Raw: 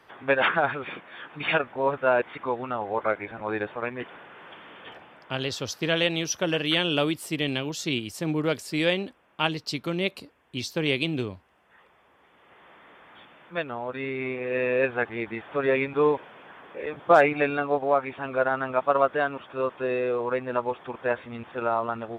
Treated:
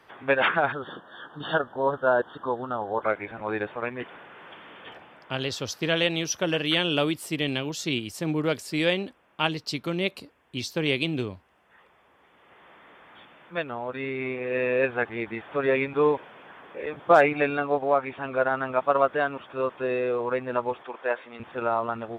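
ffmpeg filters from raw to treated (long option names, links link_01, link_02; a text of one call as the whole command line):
ffmpeg -i in.wav -filter_complex "[0:a]asettb=1/sr,asplit=3[link_01][link_02][link_03];[link_01]atrim=end=0.724[link_04];[link_02]atrim=start=0.72:end=3.03,asetpts=PTS-STARTPTS,afade=type=in:duration=0.004:curve=qsin,afade=type=out:start_time=2.306:duration=0.004:curve=qsin,asuperstop=centerf=2300:order=8:qfactor=1.8[link_05];[link_03]atrim=start=3.026[link_06];[link_04][link_05]acrossfade=duration=0.004:curve1=hsin:curve2=qsin[link_07];[link_07][link_06]acrossfade=duration=0.004:curve1=qsin:curve2=hsin,asettb=1/sr,asplit=3[link_08][link_09][link_10];[link_08]atrim=end=17.964[link_11];[link_09]atrim=start=17.96:end=18.46,asetpts=PTS-STARTPTS,afade=type=in:duration=0.004:curve=qsin,afade=type=out:start_time=0.496:duration=0.004:curve=qsin,lowpass=6800[link_12];[link_10]atrim=start=18.456[link_13];[link_11][link_12]acrossfade=duration=0.004:curve1=hsin:curve2=qsin[link_14];[link_14][link_13]acrossfade=duration=0.004:curve1=qsin:curve2=hsin,asettb=1/sr,asplit=3[link_15][link_16][link_17];[link_15]atrim=end=20.824[link_18];[link_16]atrim=start=20.82:end=21.4,asetpts=PTS-STARTPTS,afade=type=in:duration=0.004:curve=qsin,afade=type=out:start_time=0.576:duration=0.004:curve=qsin,highpass=390,lowpass=6100[link_19];[link_17]atrim=start=21.396[link_20];[link_18][link_19]acrossfade=duration=0.004:curve1=hsin:curve2=qsin[link_21];[link_21][link_20]acrossfade=duration=0.004:curve1=qsin:curve2=hsin" out.wav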